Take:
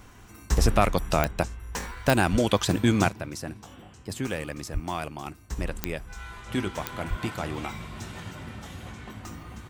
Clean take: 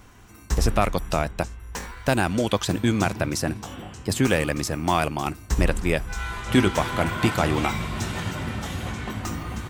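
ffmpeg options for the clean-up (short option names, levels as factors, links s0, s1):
-filter_complex "[0:a]adeclick=t=4,asplit=3[s0][s1][s2];[s0]afade=t=out:st=2.31:d=0.02[s3];[s1]highpass=f=140:w=0.5412,highpass=f=140:w=1.3066,afade=t=in:st=2.31:d=0.02,afade=t=out:st=2.43:d=0.02[s4];[s2]afade=t=in:st=2.43:d=0.02[s5];[s3][s4][s5]amix=inputs=3:normalize=0,asplit=3[s6][s7][s8];[s6]afade=t=out:st=4.73:d=0.02[s9];[s7]highpass=f=140:w=0.5412,highpass=f=140:w=1.3066,afade=t=in:st=4.73:d=0.02,afade=t=out:st=4.85:d=0.02[s10];[s8]afade=t=in:st=4.85:d=0.02[s11];[s9][s10][s11]amix=inputs=3:normalize=0,asplit=3[s12][s13][s14];[s12]afade=t=out:st=7.09:d=0.02[s15];[s13]highpass=f=140:w=0.5412,highpass=f=140:w=1.3066,afade=t=in:st=7.09:d=0.02,afade=t=out:st=7.21:d=0.02[s16];[s14]afade=t=in:st=7.21:d=0.02[s17];[s15][s16][s17]amix=inputs=3:normalize=0,asetnsamples=n=441:p=0,asendcmd='3.09 volume volume 10dB',volume=1"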